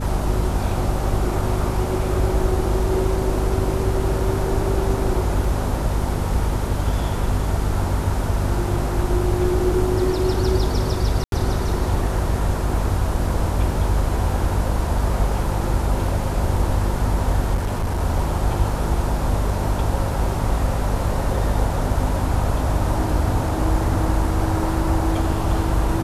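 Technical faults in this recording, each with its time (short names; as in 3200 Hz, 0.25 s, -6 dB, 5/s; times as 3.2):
hum 50 Hz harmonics 5 -24 dBFS
5.44 gap 2.9 ms
11.24–11.32 gap 82 ms
17.54–18.01 clipped -18.5 dBFS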